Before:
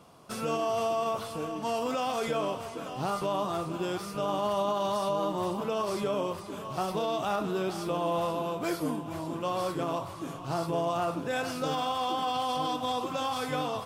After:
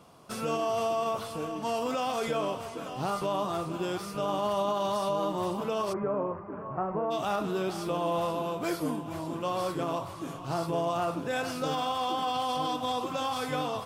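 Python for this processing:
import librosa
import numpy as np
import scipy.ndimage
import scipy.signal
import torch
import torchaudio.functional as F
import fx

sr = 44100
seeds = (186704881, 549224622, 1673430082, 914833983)

y = fx.cheby2_lowpass(x, sr, hz=3500.0, order=4, stop_db=40, at=(5.92, 7.1), fade=0.02)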